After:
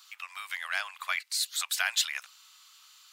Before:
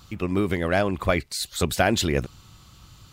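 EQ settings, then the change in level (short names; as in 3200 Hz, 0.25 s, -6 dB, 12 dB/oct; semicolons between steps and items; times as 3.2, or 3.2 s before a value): Bessel high-pass 1700 Hz, order 8; 0.0 dB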